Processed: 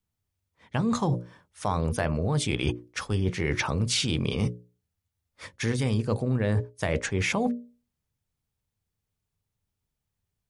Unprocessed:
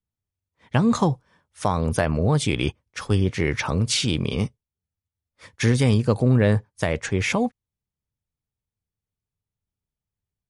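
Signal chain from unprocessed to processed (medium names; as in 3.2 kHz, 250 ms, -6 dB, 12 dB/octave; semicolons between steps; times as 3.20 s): hum notches 60/120/180/240/300/360/420/480/540/600 Hz; reverse; compression 6:1, threshold -29 dBFS, peak gain reduction 14 dB; reverse; trim +5.5 dB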